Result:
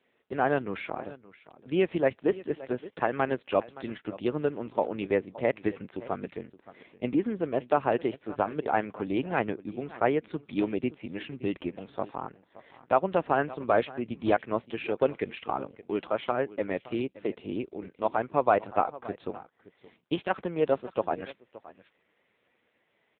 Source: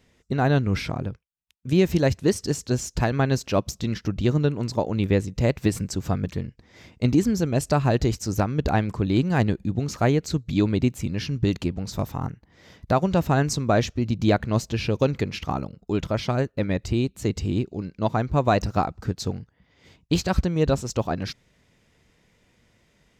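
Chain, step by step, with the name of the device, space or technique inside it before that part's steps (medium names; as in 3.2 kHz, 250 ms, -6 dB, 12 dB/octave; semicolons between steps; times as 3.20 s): satellite phone (band-pass 380–3300 Hz; delay 571 ms -18 dB; AMR-NB 5.9 kbps 8 kHz)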